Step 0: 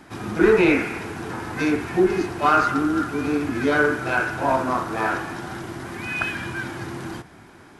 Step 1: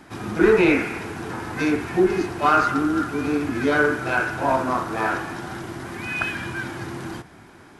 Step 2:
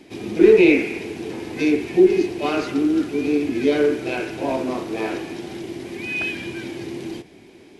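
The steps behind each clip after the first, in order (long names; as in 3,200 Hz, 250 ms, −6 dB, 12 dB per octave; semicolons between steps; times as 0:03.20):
no processing that can be heard
drawn EQ curve 120 Hz 0 dB, 400 Hz +12 dB, 1,400 Hz −10 dB, 2,300 Hz +9 dB, 4,300 Hz +8 dB, 8,800 Hz +3 dB; level −6 dB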